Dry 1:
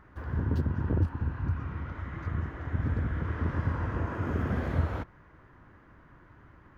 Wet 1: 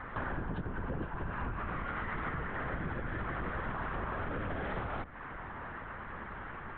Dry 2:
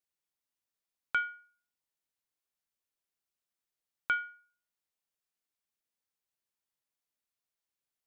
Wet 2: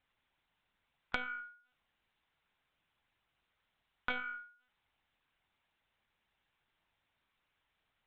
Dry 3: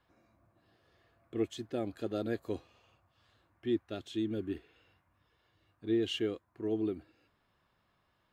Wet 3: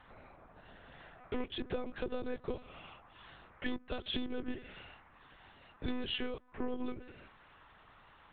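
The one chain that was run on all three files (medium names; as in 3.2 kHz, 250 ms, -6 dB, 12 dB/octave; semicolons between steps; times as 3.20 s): octave divider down 1 oct, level -4 dB; overdrive pedal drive 21 dB, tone 2.9 kHz, clips at -13.5 dBFS; high-pass 46 Hz; de-hum 126.8 Hz, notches 3; monotone LPC vocoder at 8 kHz 250 Hz; compression 16:1, threshold -36 dBFS; trim +3 dB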